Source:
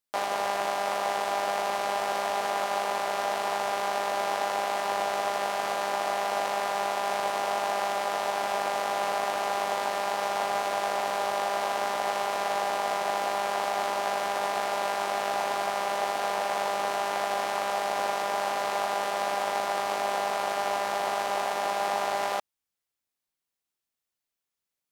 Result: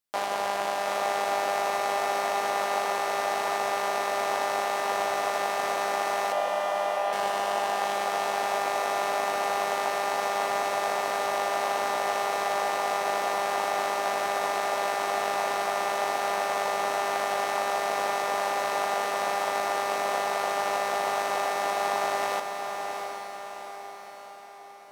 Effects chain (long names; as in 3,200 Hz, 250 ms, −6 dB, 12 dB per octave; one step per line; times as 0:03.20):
0:06.32–0:07.13: loudspeaker in its box 410–3,100 Hz, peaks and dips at 610 Hz +5 dB, 1,400 Hz −7 dB, 2,200 Hz −4 dB
feedback delay with all-pass diffusion 740 ms, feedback 50%, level −6 dB